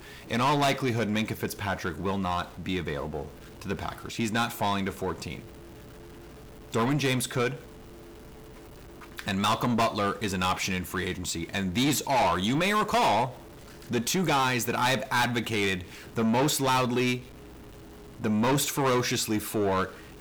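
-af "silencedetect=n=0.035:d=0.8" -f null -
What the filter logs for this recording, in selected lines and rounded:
silence_start: 5.35
silence_end: 6.74 | silence_duration: 1.38
silence_start: 7.53
silence_end: 9.19 | silence_duration: 1.67
silence_start: 17.17
silence_end: 18.24 | silence_duration: 1.07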